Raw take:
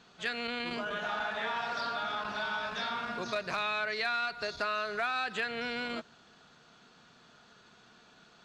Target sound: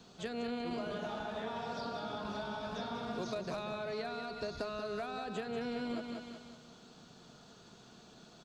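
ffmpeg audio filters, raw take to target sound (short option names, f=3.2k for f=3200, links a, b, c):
-filter_complex "[0:a]aecho=1:1:186|372|558|744|930:0.398|0.183|0.0842|0.0388|0.0178,acrossover=split=250|740|1700[a][b][c][d];[a]acompressor=threshold=-50dB:ratio=4[e];[b]acompressor=threshold=-44dB:ratio=4[f];[c]acompressor=threshold=-46dB:ratio=4[g];[d]acompressor=threshold=-50dB:ratio=4[h];[e][f][g][h]amix=inputs=4:normalize=0,equalizer=f=1.8k:w=0.66:g=-13,volume=6.5dB"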